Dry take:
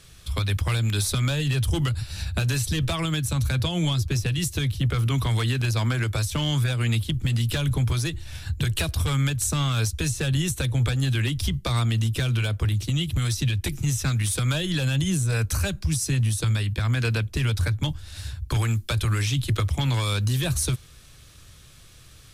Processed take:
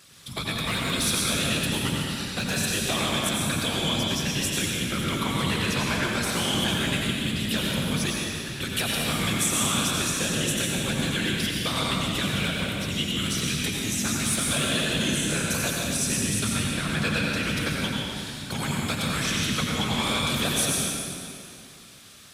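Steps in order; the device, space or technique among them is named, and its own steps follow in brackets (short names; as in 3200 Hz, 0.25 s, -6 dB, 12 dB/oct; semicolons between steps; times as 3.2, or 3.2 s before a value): whispering ghost (whisperiser; HPF 450 Hz 6 dB/oct; reverb RT60 2.5 s, pre-delay 80 ms, DRR -3 dB)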